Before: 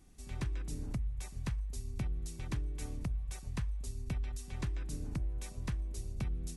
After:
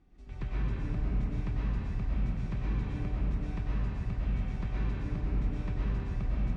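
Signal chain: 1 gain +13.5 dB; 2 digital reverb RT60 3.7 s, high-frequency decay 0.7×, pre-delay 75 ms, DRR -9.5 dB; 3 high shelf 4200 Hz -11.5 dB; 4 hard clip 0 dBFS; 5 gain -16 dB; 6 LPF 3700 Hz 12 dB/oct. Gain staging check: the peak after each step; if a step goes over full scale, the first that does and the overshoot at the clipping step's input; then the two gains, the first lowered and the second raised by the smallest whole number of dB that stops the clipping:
-13.0, -4.0, -4.0, -4.0, -20.0, -20.0 dBFS; no overload

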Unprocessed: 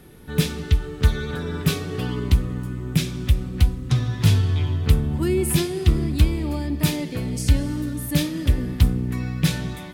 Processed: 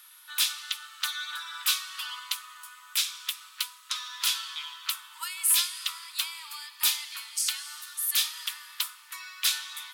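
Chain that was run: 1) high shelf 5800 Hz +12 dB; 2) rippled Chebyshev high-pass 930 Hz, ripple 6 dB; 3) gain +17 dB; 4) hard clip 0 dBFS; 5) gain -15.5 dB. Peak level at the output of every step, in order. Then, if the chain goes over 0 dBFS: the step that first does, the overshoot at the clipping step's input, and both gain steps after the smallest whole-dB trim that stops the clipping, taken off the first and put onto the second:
-3.0, -9.5, +7.5, 0.0, -15.5 dBFS; step 3, 7.5 dB; step 3 +9 dB, step 5 -7.5 dB

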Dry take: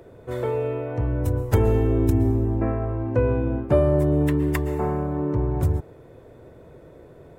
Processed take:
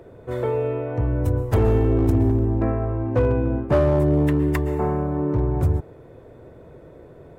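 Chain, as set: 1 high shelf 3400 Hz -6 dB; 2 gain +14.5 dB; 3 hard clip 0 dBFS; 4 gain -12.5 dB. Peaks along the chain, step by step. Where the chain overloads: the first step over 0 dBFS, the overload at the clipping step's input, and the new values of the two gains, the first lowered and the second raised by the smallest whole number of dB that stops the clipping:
-6.5, +8.0, 0.0, -12.5 dBFS; step 2, 8.0 dB; step 2 +6.5 dB, step 4 -4.5 dB

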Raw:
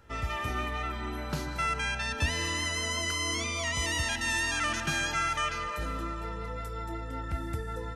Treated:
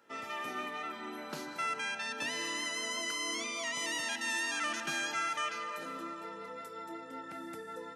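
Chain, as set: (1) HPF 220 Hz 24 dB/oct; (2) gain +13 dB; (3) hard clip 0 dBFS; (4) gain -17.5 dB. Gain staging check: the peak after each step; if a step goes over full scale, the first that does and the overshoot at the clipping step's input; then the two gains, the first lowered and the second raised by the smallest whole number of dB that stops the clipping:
-18.0, -5.0, -5.0, -22.5 dBFS; no overload

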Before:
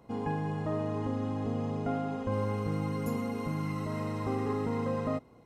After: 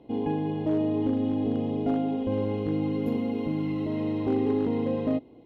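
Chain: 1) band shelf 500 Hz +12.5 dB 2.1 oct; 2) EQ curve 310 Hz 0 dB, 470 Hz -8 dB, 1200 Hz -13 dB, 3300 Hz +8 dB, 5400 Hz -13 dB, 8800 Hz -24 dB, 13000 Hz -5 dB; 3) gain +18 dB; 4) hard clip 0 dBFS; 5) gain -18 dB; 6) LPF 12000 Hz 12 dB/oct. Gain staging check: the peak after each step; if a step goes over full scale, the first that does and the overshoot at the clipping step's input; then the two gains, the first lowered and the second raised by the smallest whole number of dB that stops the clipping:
-11.0, -14.5, +3.5, 0.0, -18.0, -18.0 dBFS; step 3, 3.5 dB; step 3 +14 dB, step 5 -14 dB

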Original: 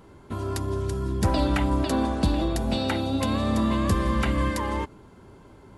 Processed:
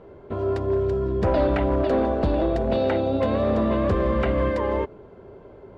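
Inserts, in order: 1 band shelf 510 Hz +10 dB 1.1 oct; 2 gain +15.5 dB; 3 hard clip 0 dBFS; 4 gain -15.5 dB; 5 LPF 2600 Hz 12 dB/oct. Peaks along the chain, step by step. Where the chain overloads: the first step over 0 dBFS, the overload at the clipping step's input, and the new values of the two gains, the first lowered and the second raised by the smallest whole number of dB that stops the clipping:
-6.5, +9.0, 0.0, -15.5, -15.0 dBFS; step 2, 9.0 dB; step 2 +6.5 dB, step 4 -6.5 dB

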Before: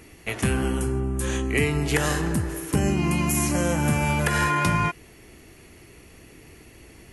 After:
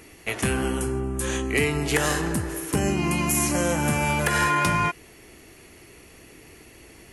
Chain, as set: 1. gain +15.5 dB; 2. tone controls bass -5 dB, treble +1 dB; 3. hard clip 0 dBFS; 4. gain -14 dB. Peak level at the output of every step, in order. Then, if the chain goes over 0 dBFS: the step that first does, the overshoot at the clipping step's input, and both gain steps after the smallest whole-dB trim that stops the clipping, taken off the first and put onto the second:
+5.5, +6.0, 0.0, -14.0 dBFS; step 1, 6.0 dB; step 1 +9.5 dB, step 4 -8 dB

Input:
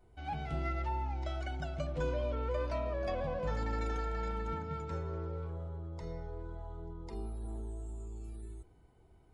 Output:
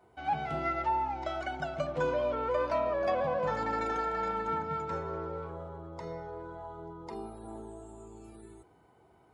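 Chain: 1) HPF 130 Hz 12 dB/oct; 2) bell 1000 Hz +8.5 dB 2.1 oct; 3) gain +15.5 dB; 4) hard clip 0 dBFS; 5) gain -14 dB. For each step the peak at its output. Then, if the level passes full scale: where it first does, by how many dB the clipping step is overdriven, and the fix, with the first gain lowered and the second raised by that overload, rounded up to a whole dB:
-25.5, -20.5, -5.0, -5.0, -19.0 dBFS; no overload

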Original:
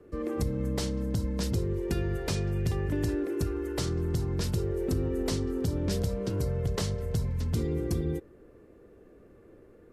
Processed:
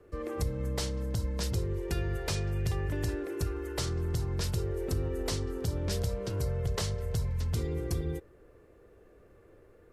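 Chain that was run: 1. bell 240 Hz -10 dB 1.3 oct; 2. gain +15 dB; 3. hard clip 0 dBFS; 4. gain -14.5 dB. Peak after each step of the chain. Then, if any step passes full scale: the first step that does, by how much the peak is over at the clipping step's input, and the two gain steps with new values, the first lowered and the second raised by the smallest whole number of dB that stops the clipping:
-19.0, -4.0, -4.0, -18.5 dBFS; no overload

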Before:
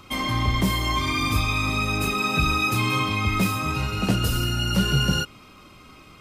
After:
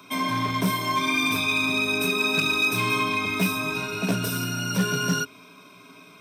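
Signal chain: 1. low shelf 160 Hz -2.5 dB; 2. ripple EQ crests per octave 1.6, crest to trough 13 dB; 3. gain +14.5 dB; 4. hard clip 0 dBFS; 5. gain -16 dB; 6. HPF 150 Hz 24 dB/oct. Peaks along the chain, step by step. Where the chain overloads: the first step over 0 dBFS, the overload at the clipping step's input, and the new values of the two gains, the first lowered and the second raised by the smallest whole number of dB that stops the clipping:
-9.5, -6.0, +8.5, 0.0, -16.0, -10.0 dBFS; step 3, 8.5 dB; step 3 +5.5 dB, step 5 -7 dB

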